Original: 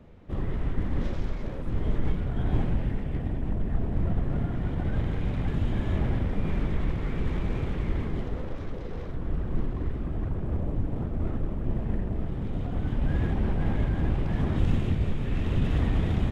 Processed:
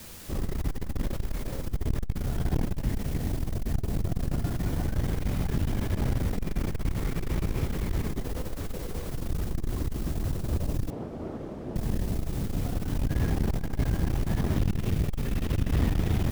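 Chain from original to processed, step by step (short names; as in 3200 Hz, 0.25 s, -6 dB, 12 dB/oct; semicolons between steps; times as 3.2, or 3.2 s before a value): CVSD 32 kbps; in parallel at -10 dB: requantised 6-bit, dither triangular; 10.9–11.76 on the sum: band-pass 560 Hz, Q 0.76; core saturation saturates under 130 Hz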